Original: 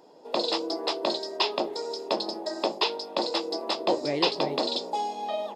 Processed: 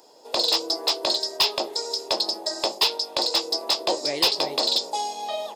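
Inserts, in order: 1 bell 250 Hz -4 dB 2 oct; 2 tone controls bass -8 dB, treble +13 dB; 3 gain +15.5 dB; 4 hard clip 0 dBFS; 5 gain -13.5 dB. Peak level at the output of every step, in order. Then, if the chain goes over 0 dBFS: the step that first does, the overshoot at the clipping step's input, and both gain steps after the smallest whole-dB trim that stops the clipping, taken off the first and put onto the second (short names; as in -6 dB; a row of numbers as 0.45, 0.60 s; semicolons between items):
-10.0, -5.5, +10.0, 0.0, -13.5 dBFS; step 3, 10.0 dB; step 3 +5.5 dB, step 5 -3.5 dB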